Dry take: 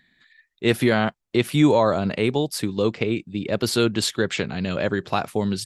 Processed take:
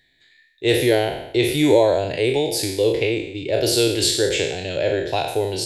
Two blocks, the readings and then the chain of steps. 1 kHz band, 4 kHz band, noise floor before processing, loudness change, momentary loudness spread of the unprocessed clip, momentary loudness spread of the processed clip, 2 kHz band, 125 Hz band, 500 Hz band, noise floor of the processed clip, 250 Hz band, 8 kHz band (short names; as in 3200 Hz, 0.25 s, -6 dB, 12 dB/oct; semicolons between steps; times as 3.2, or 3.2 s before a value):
-0.5 dB, +5.5 dB, -73 dBFS, +2.5 dB, 8 LU, 7 LU, +1.0 dB, -1.5 dB, +4.5 dB, -61 dBFS, -1.0 dB, +7.0 dB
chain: spectral trails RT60 0.81 s; fixed phaser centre 500 Hz, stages 4; gain +3 dB